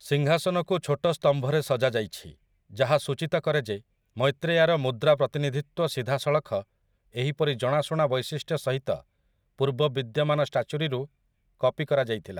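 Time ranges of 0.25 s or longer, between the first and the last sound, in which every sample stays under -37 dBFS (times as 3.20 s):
2.30–2.76 s
3.78–4.17 s
6.62–7.15 s
8.99–9.60 s
11.05–11.61 s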